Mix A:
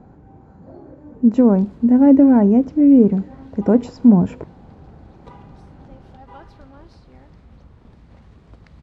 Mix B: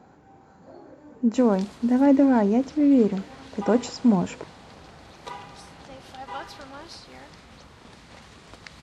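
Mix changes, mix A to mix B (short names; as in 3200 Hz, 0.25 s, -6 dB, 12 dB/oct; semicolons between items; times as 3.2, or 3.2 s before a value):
background +7.5 dB; master: add tilt +4 dB/oct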